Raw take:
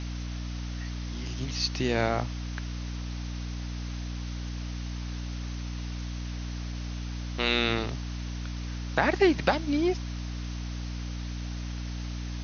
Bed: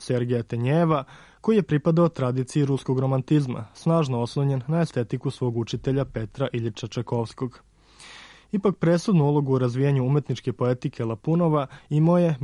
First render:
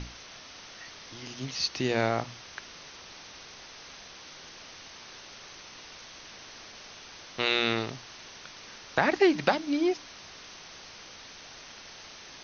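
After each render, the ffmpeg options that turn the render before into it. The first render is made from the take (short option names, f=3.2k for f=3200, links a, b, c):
-af "bandreject=f=60:t=h:w=6,bandreject=f=120:t=h:w=6,bandreject=f=180:t=h:w=6,bandreject=f=240:t=h:w=6,bandreject=f=300:t=h:w=6"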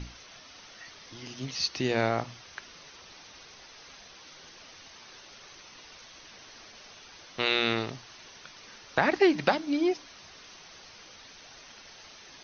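-af "afftdn=nr=6:nf=-48"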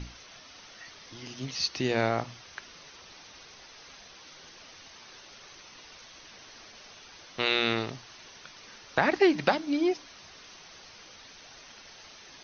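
-af anull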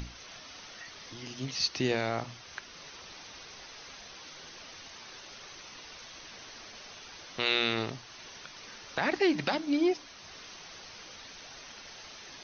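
-filter_complex "[0:a]acrossover=split=2400[a][b];[a]alimiter=limit=-19dB:level=0:latency=1[c];[c][b]amix=inputs=2:normalize=0,acompressor=mode=upward:threshold=-42dB:ratio=2.5"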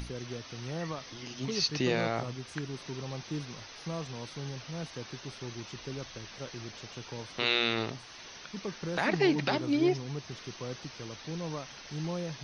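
-filter_complex "[1:a]volume=-16.5dB[a];[0:a][a]amix=inputs=2:normalize=0"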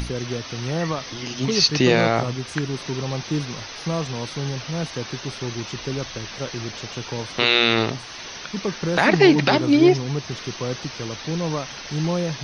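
-af "volume=12dB,alimiter=limit=-2dB:level=0:latency=1"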